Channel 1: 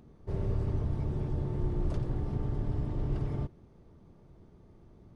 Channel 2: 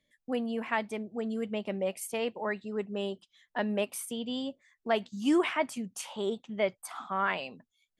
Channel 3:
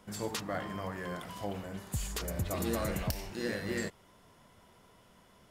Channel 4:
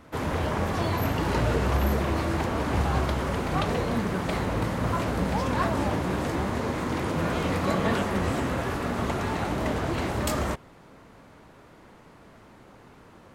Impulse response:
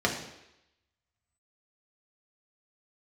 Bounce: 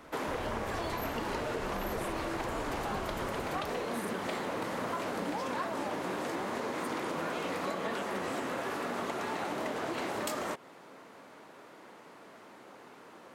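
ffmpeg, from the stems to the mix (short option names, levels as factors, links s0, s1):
-filter_complex "[0:a]aecho=1:1:2:0.89,volume=0.282[s0];[1:a]acompressor=threshold=0.0178:ratio=6,aphaser=in_gain=1:out_gain=1:delay=2.5:decay=0.77:speed=1.7:type=triangular,volume=0.531,asplit=3[s1][s2][s3];[s1]atrim=end=5.36,asetpts=PTS-STARTPTS,afade=t=out:st=5.356:d=0.004:c=hsin[s4];[s2]atrim=start=5.36:end=6.71,asetpts=PTS-STARTPTS,volume=0[s5];[s3]atrim=start=6.71,asetpts=PTS-STARTPTS,afade=t=in:d=0.004:c=hsin[s6];[s4][s5][s6]concat=n=3:v=0:a=1[s7];[2:a]adelay=550,volume=0.422[s8];[3:a]highpass=300,volume=1.12[s9];[s0][s7][s8][s9]amix=inputs=4:normalize=0,acompressor=threshold=0.0251:ratio=6"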